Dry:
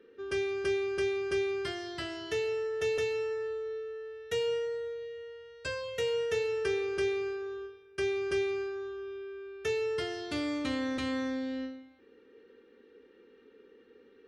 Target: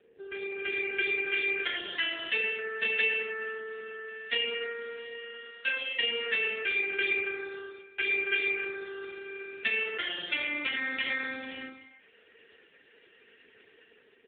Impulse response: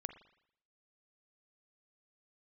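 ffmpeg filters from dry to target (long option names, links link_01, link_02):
-filter_complex "[0:a]equalizer=frequency=1100:width_type=o:width=0.56:gain=-10,asplit=2[link_01][link_02];[link_02]acompressor=threshold=-42dB:ratio=6,volume=-3dB[link_03];[link_01][link_03]amix=inputs=2:normalize=0,lowshelf=frequency=280:gain=-8.5,bandreject=frequency=60:width_type=h:width=6,bandreject=frequency=120:width_type=h:width=6,bandreject=frequency=180:width_type=h:width=6,bandreject=frequency=240:width_type=h:width=6,bandreject=frequency=300:width_type=h:width=6,bandreject=frequency=360:width_type=h:width=6,bandreject=frequency=420:width_type=h:width=6,bandreject=frequency=480:width_type=h:width=6,aecho=1:1:112|224|336|448:0.251|0.0879|0.0308|0.0108,acrossover=split=460|1100[link_04][link_05][link_06];[link_04]asoftclip=type=tanh:threshold=-39dB[link_07];[link_06]dynaudnorm=framelen=110:gausssize=13:maxgain=15dB[link_08];[link_07][link_05][link_08]amix=inputs=3:normalize=0,volume=-2dB" -ar 8000 -c:a libopencore_amrnb -b:a 4750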